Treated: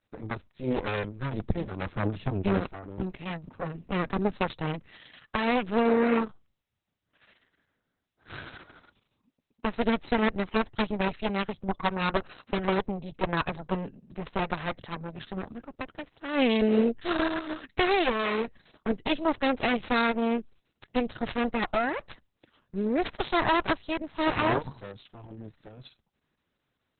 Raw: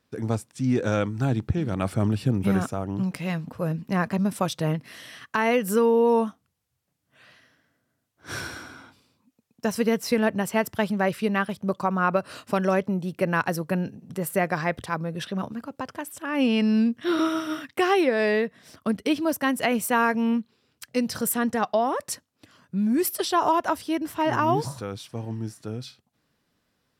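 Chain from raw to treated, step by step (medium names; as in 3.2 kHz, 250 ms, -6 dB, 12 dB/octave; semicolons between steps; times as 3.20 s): Chebyshev shaper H 3 -19 dB, 4 -9 dB, 7 -41 dB, 8 -41 dB, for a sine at -10.5 dBFS; trim -2.5 dB; Opus 6 kbps 48 kHz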